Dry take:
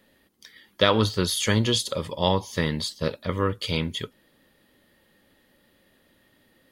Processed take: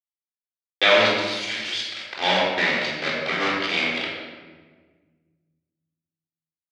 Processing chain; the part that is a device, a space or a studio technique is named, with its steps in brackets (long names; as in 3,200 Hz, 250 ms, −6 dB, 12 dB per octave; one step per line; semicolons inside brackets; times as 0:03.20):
hand-held game console (bit reduction 4 bits; loudspeaker in its box 440–4,500 Hz, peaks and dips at 460 Hz −10 dB, 1,100 Hz −7 dB, 2,200 Hz +8 dB)
0:01.07–0:02.10: first-order pre-emphasis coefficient 0.97
rectangular room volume 1,400 cubic metres, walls mixed, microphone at 3.7 metres